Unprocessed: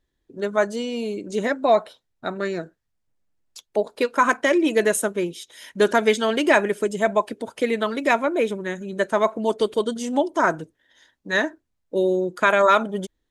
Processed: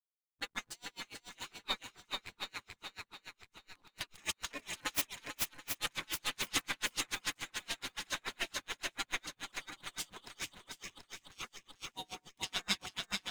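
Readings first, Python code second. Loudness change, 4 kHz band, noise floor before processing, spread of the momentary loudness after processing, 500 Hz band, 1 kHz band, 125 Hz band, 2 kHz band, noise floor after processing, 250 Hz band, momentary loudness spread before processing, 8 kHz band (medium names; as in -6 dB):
-18.0 dB, -4.5 dB, -75 dBFS, 13 LU, -34.0 dB, -23.0 dB, -19.0 dB, -16.0 dB, -84 dBFS, -27.5 dB, 11 LU, -6.0 dB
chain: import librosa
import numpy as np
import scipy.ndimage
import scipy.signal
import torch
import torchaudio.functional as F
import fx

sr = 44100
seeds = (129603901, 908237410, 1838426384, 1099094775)

y = fx.tracing_dist(x, sr, depth_ms=0.1)
y = fx.spec_gate(y, sr, threshold_db=-25, keep='weak')
y = fx.backlash(y, sr, play_db=-44.0)
y = fx.peak_eq(y, sr, hz=570.0, db=-5.5, octaves=1.2)
y = fx.echo_swing(y, sr, ms=732, ratio=1.5, feedback_pct=43, wet_db=-3.5)
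y = y * 10.0 ** (-35 * (0.5 - 0.5 * np.cos(2.0 * np.pi * 7.0 * np.arange(len(y)) / sr)) / 20.0)
y = y * librosa.db_to_amplitude(5.0)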